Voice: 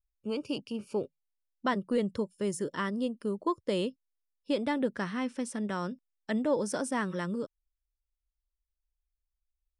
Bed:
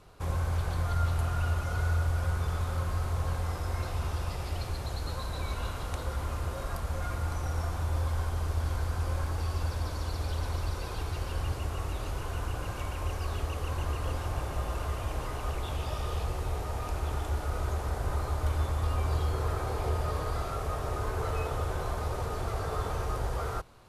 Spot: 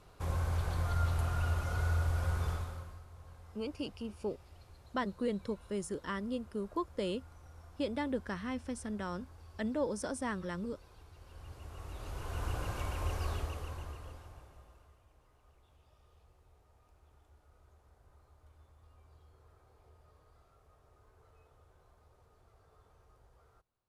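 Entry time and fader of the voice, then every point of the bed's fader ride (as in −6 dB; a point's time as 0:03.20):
3.30 s, −5.5 dB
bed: 0:02.50 −3.5 dB
0:03.05 −22.5 dB
0:11.15 −22.5 dB
0:12.49 −2.5 dB
0:13.29 −2.5 dB
0:15.05 −32.5 dB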